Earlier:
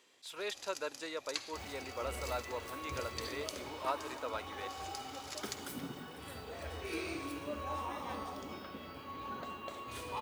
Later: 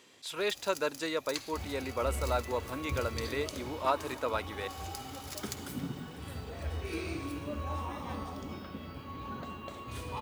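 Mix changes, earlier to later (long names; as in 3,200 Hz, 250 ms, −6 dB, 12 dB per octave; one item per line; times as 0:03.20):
speech +7.0 dB
first sound: remove low-pass filter 7,800 Hz 12 dB per octave
master: add bass and treble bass +11 dB, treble 0 dB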